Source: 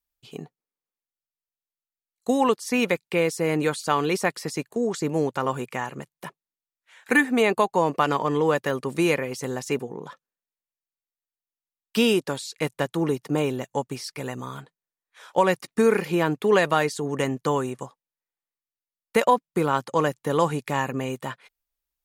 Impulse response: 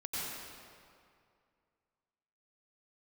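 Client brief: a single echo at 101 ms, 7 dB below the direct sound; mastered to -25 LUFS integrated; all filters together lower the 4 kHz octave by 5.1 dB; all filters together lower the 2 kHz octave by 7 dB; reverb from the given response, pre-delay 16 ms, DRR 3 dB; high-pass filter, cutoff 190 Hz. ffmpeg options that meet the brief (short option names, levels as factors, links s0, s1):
-filter_complex "[0:a]highpass=190,equalizer=f=2000:t=o:g=-8,equalizer=f=4000:t=o:g=-3.5,aecho=1:1:101:0.447,asplit=2[s0][s1];[1:a]atrim=start_sample=2205,adelay=16[s2];[s1][s2]afir=irnorm=-1:irlink=0,volume=0.473[s3];[s0][s3]amix=inputs=2:normalize=0,volume=0.841"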